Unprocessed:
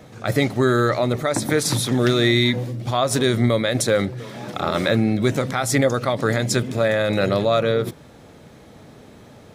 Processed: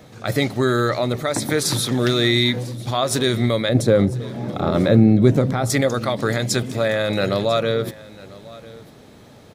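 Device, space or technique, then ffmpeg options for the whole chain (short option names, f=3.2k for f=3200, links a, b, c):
presence and air boost: -filter_complex "[0:a]asettb=1/sr,asplit=3[a][b][c];[a]atrim=end=3.694[d];[b]atrim=start=3.69:end=5.7,asetpts=PTS-STARTPTS,afade=t=in:d=0.004:c=qsin,afade=t=out:st=2.006:d=0.004:c=qsin,tiltshelf=f=910:g=8.5[e];[c]atrim=start=5.696[f];[d][e]acrossfade=d=0.004:c1=hsin:c2=qsin[g];[g][f]acrossfade=d=0.004:c1=qsin:c2=hsin,equalizer=f=4.1k:t=o:w=0.77:g=3.5,highshelf=f=12k:g=5,aecho=1:1:997:0.0944,volume=-1dB"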